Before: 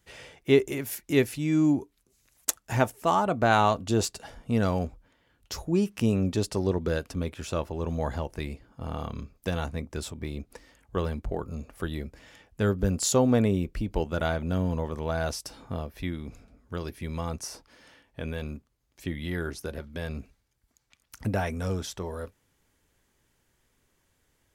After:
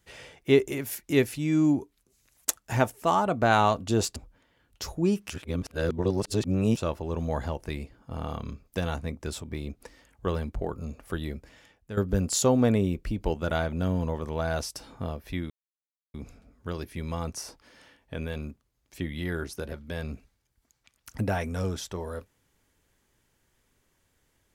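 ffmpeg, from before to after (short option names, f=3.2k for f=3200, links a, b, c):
-filter_complex "[0:a]asplit=6[a][b][c][d][e][f];[a]atrim=end=4.162[g];[b]atrim=start=4.858:end=6.002[h];[c]atrim=start=5.998:end=7.472,asetpts=PTS-STARTPTS,areverse[i];[d]atrim=start=7.468:end=12.67,asetpts=PTS-STARTPTS,afade=t=out:st=4.592:d=0.61:silence=0.223872[j];[e]atrim=start=12.67:end=16.2,asetpts=PTS-STARTPTS,afade=t=in:d=0.004:c=hsin:silence=0.223872,afade=t=out:st=3.526:d=0.004:c=hsin,apad=pad_dur=0.64[k];[f]atrim=start=16.2,asetpts=PTS-STARTPTS,afade=t=in:d=0.004:c=hsin[l];[g][h]acrossfade=d=0.004:c1=hsin:c2=hsin[m];[m][i]acrossfade=d=0.004:c1=hsin:c2=hsin[n];[j][k][l]concat=n=3:v=0:a=1[o];[n][o]acrossfade=d=0.004:c1=hsin:c2=hsin"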